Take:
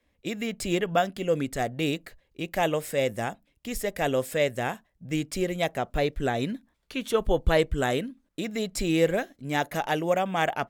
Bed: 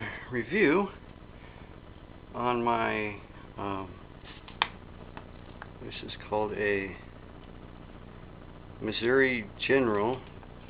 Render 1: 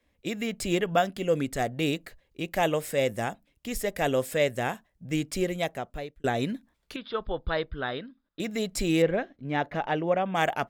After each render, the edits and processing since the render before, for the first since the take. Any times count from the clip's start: 5.44–6.24 fade out linear; 6.96–8.4 rippled Chebyshev low-pass 5100 Hz, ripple 9 dB; 9.02–10.35 air absorption 270 m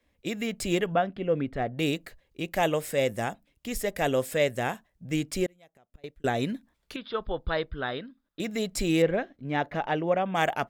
0.92–1.78 air absorption 380 m; 5.46–6.04 flipped gate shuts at -29 dBFS, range -28 dB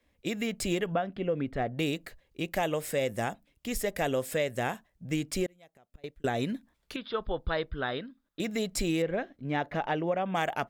compressor, threshold -25 dBFS, peak gain reduction 8 dB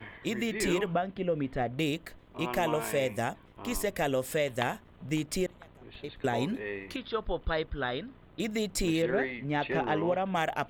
add bed -9 dB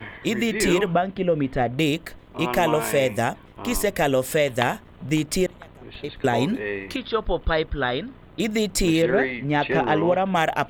gain +8.5 dB

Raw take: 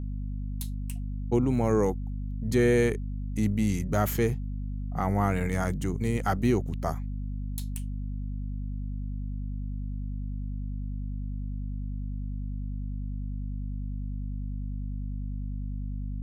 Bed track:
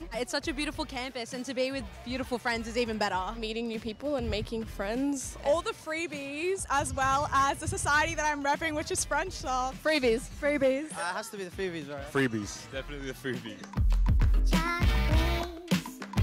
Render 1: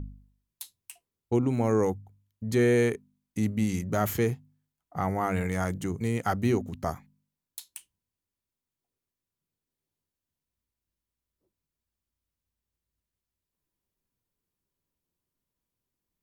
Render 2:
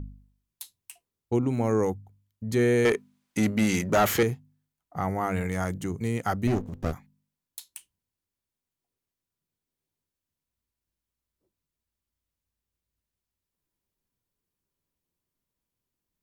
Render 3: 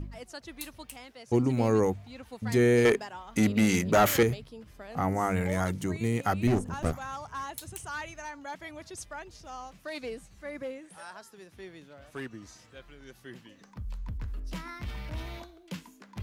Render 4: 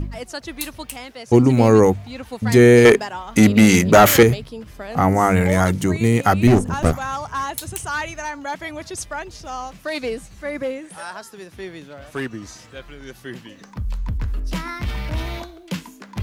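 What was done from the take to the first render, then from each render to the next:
de-hum 50 Hz, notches 5
2.85–4.23 overdrive pedal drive 21 dB, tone 4100 Hz, clips at -11.5 dBFS; 6.47–6.93 running maximum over 33 samples
add bed track -12 dB
gain +12 dB; limiter -1 dBFS, peak gain reduction 1 dB

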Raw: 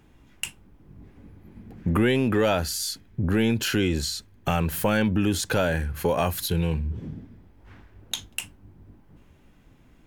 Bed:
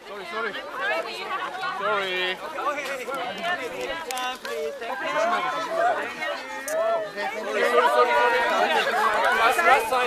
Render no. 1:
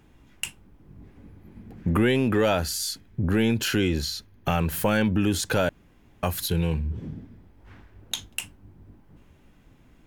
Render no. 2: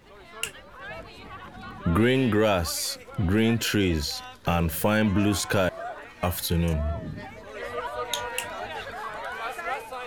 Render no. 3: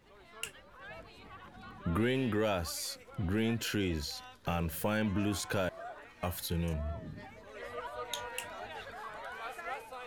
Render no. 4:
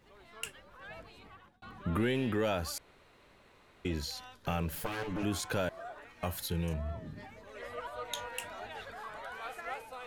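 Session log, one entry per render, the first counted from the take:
3.9–4.59 bell 8000 Hz -12.5 dB 0.29 oct; 5.69–6.23 room tone
add bed -13.5 dB
gain -9.5 dB
1–1.62 fade out equal-power; 2.78–3.85 room tone; 4.75–5.23 minimum comb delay 6.8 ms

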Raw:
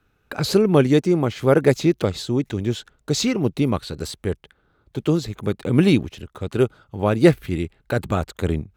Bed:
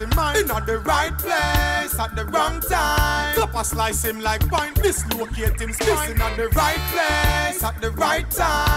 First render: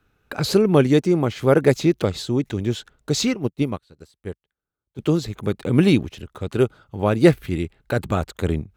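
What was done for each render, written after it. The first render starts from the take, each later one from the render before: 3.34–4.99 upward expander 2.5:1, over -34 dBFS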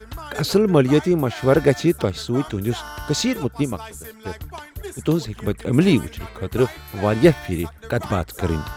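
add bed -15 dB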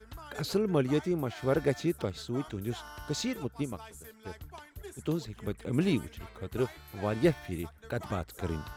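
gain -12 dB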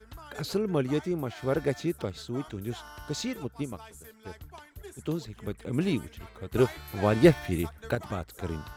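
6.54–7.95 gain +7 dB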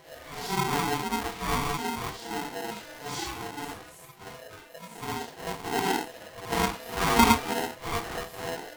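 phase scrambler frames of 0.2 s; polarity switched at an audio rate 580 Hz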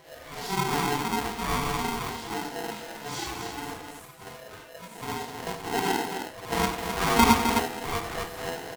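loudspeakers at several distances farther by 32 m -11 dB, 89 m -7 dB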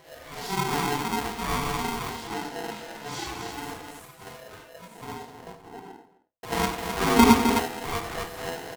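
2.27–3.48 high shelf 9100 Hz -5 dB; 4.31–6.43 studio fade out; 6.99–7.56 small resonant body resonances 260/400 Hz, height 8 dB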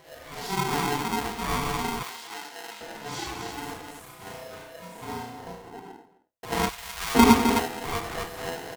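2.03–2.81 HPF 1500 Hz 6 dB/oct; 4.03–5.7 flutter echo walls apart 5.8 m, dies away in 0.57 s; 6.69–7.15 passive tone stack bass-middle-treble 10-0-10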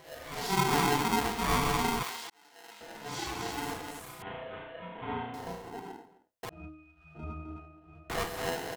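2.3–3.56 fade in; 4.22–5.34 elliptic low-pass 3300 Hz; 6.49–8.1 octave resonator D#, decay 0.67 s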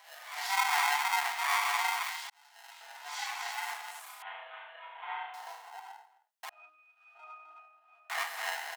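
Chebyshev high-pass 770 Hz, order 4; dynamic EQ 2000 Hz, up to +6 dB, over -50 dBFS, Q 2.7

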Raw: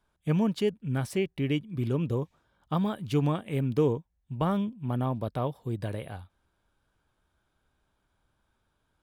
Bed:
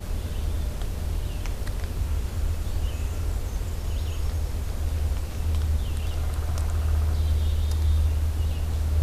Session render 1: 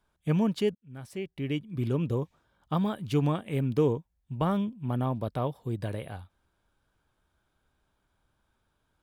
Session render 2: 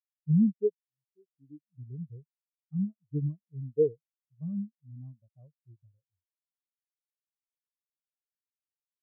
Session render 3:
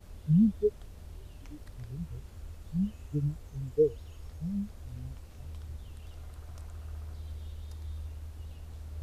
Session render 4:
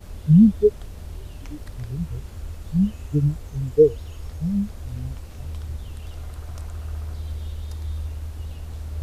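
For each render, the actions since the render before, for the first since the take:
0.75–1.83 fade in linear
spectral expander 4:1
add bed -18 dB
gain +10.5 dB

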